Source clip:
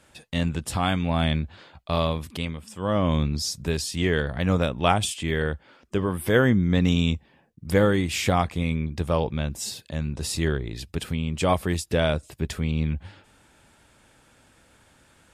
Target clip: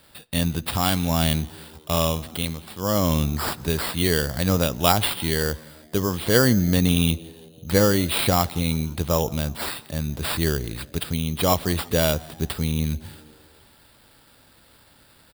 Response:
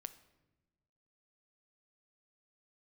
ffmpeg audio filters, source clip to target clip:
-filter_complex "[0:a]acrusher=samples=7:mix=1:aa=0.000001,asplit=5[a][b][c][d][e];[b]adelay=170,afreqshift=76,volume=-24dB[f];[c]adelay=340,afreqshift=152,volume=-28.9dB[g];[d]adelay=510,afreqshift=228,volume=-33.8dB[h];[e]adelay=680,afreqshift=304,volume=-38.6dB[i];[a][f][g][h][i]amix=inputs=5:normalize=0,aexciter=amount=1.3:drive=8.9:freq=3.5k,asplit=2[j][k];[1:a]atrim=start_sample=2205,lowpass=6.5k[l];[k][l]afir=irnorm=-1:irlink=0,volume=-5.5dB[m];[j][m]amix=inputs=2:normalize=0,volume=-1dB"

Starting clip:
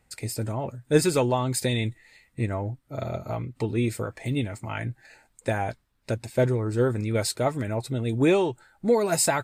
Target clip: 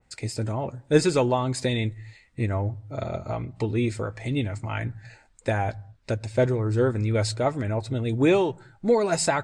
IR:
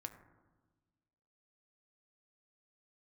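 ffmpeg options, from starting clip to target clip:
-filter_complex "[0:a]lowpass=f=7.8k:w=0.5412,lowpass=f=7.8k:w=1.3066,asplit=2[a][b];[b]asubboost=boost=10:cutoff=89[c];[1:a]atrim=start_sample=2205,afade=t=out:st=0.3:d=0.01,atrim=end_sample=13671[d];[c][d]afir=irnorm=-1:irlink=0,volume=-11dB[e];[a][e]amix=inputs=2:normalize=0,adynamicequalizer=threshold=0.0126:dfrequency=2000:dqfactor=0.7:tfrequency=2000:tqfactor=0.7:attack=5:release=100:ratio=0.375:range=1.5:mode=cutabove:tftype=highshelf"

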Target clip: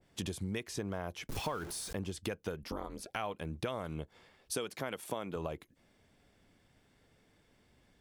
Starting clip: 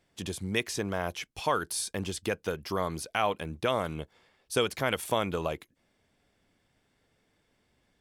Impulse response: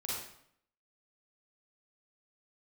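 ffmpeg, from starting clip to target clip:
-filter_complex "[0:a]asettb=1/sr,asplit=3[a][b][c];[a]atrim=end=1.294[d];[b]atrim=start=1.29:end=1.93,asetpts=PTS-STARTPTS,afade=t=in:d=0.004:c=qsin,afade=t=out:st=0.636:d=0.004:c=qsin,aeval=exprs='val(0)+0.5*0.0211*sgn(val(0))':c=same[e];[c]atrim=start=1.926[f];[d][e]acrossfade=d=0.004:c1=hsin:c2=qsin[g];[g][f]acrossfade=d=0.004:c1=qsin:c2=hsin,lowshelf=f=330:g=3.5,acompressor=threshold=-37dB:ratio=5,asettb=1/sr,asplit=3[h][i][j];[h]atrim=end=2.634[k];[i]atrim=start=2.63:end=3.16,asetpts=PTS-STARTPTS,afade=t=in:d=0.004:c=qsin,afade=t=out:st=0.526:d=0.004:c=qsin,aeval=exprs='val(0)*sin(2*PI*120*n/s)':c=same[l];[j]atrim=start=3.156[m];[k][l]acrossfade=d=0.004:c1=hsin:c2=qsin[n];[n][m]acrossfade=d=0.004:c1=qsin:c2=hsin,asettb=1/sr,asplit=3[o][p][q];[o]atrim=end=4.544[r];[p]atrim=start=4.54:end=5.36,asetpts=PTS-STARTPTS,afade=t=in:d=0.004:c=qsin,afade=t=out:st=0.816:d=0.004:c=qsin,highpass=170[s];[q]atrim=start=5.356[t];[r][s]acrossfade=d=0.004:c1=hsin:c2=qsin[u];[u][t]acrossfade=d=0.004:c1=qsin:c2=hsin,adynamicequalizer=threshold=0.00224:dfrequency=1500:dqfactor=0.7:tfrequency=1500:tqfactor=0.7:attack=5:release=100:ratio=0.375:range=2.5:mode=cutabove:tftype=highshelf,volume=2dB"

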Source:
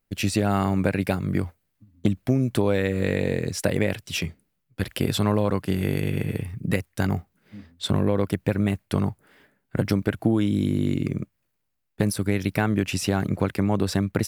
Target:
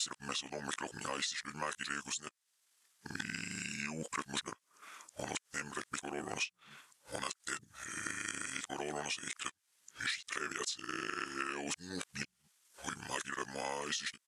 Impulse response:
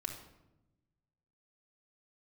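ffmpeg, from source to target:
-filter_complex "[0:a]areverse,highpass=f=350:p=1,aderivative,asplit=2[a][b];[b]adelay=13,volume=-8.5dB[c];[a][c]amix=inputs=2:normalize=0,alimiter=limit=-23dB:level=0:latency=1:release=211,lowpass=12k,acompressor=threshold=-52dB:ratio=4,asetrate=31183,aresample=44100,atempo=1.41421,highshelf=f=5.5k:g=-5,volume=15.5dB"

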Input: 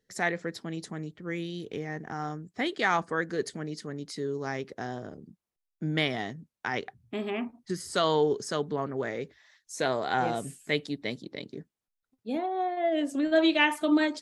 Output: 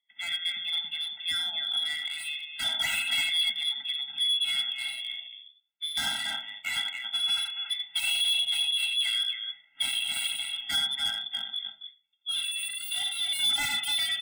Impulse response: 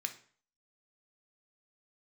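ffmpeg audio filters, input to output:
-filter_complex "[0:a]lowpass=f=3.2k:t=q:w=0.5098,lowpass=f=3.2k:t=q:w=0.6013,lowpass=f=3.2k:t=q:w=0.9,lowpass=f=3.2k:t=q:w=2.563,afreqshift=-3800,dynaudnorm=f=290:g=3:m=9.5dB,equalizer=f=1.8k:w=5.7:g=3,bandreject=f=1.5k:w=13,aecho=1:1:84.55|279.9:0.398|0.355[a];[1:a]atrim=start_sample=2205,asetrate=57330,aresample=44100[b];[a][b]afir=irnorm=-1:irlink=0,acontrast=32,volume=17dB,asoftclip=hard,volume=-17dB,asettb=1/sr,asplit=3[c][d][e];[c]atrim=end=7.324[f];[d]atrim=start=7.32:end=9.76,asetpts=PTS-STARTPTS,afade=t=in:d=0.004:c=qsin,afade=t=out:st=2.436:d=0.004:c=qsin,equalizer=f=310:w=0.83:g=-14.5[g];[e]atrim=start=9.756[h];[f][g]acrossfade=d=0.004:c1=hsin:c2=qsin[i];[i][h]acrossfade=d=0.004:c1=qsin:c2=hsin,afftfilt=real='re*eq(mod(floor(b*sr/1024/320),2),0)':imag='im*eq(mod(floor(b*sr/1024/320),2),0)':win_size=1024:overlap=0.75,volume=-5.5dB"

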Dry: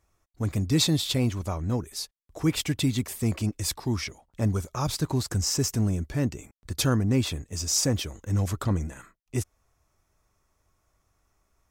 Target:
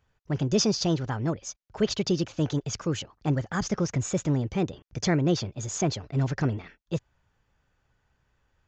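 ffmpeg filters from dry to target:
-af "aresample=11025,aresample=44100,asetrate=59535,aresample=44100"

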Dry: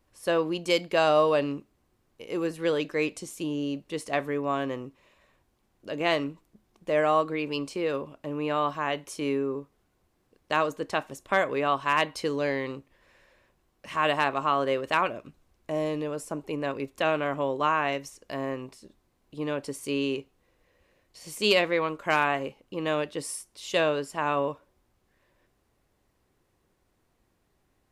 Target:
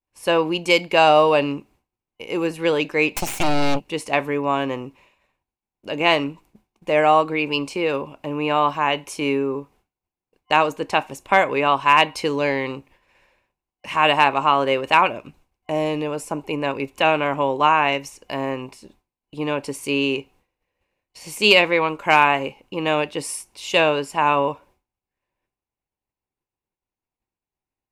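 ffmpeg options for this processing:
-filter_complex "[0:a]asplit=3[a][b][c];[a]afade=t=out:st=3.14:d=0.02[d];[b]aeval=exprs='0.0841*(cos(1*acos(clip(val(0)/0.0841,-1,1)))-cos(1*PI/2))+0.0299*(cos(3*acos(clip(val(0)/0.0841,-1,1)))-cos(3*PI/2))+0.0376*(cos(4*acos(clip(val(0)/0.0841,-1,1)))-cos(4*PI/2))+0.0299*(cos(5*acos(clip(val(0)/0.0841,-1,1)))-cos(5*PI/2))+0.0266*(cos(8*acos(clip(val(0)/0.0841,-1,1)))-cos(8*PI/2))':c=same,afade=t=in:st=3.14:d=0.02,afade=t=out:st=3.79:d=0.02[e];[c]afade=t=in:st=3.79:d=0.02[f];[d][e][f]amix=inputs=3:normalize=0,agate=range=-33dB:threshold=-54dB:ratio=3:detection=peak,superequalizer=9b=2:12b=2,volume=6dB"

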